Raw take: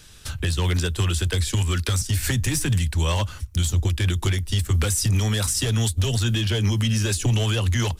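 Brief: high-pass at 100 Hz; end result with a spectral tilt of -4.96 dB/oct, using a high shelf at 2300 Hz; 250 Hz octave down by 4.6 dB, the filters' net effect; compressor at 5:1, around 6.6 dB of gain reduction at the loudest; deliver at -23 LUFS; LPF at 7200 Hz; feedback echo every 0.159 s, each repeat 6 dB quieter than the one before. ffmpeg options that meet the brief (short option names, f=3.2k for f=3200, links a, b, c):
-af "highpass=100,lowpass=7.2k,equalizer=f=250:t=o:g=-6,highshelf=f=2.3k:g=-8,acompressor=threshold=-28dB:ratio=5,aecho=1:1:159|318|477|636|795|954:0.501|0.251|0.125|0.0626|0.0313|0.0157,volume=8dB"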